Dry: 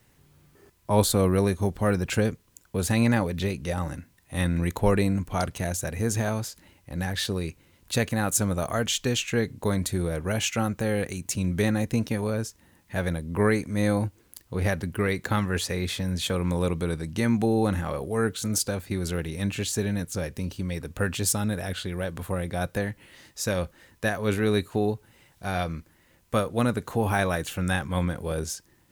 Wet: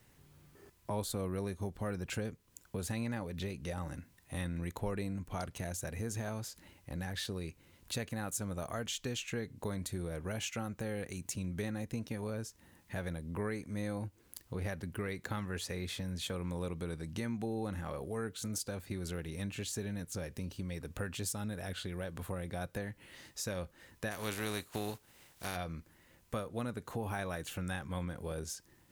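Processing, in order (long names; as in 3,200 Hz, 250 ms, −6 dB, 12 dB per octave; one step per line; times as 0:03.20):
0:24.10–0:25.55: compressing power law on the bin magnitudes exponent 0.56
downward compressor 2.5 to 1, threshold −37 dBFS, peak gain reduction 14.5 dB
level −3 dB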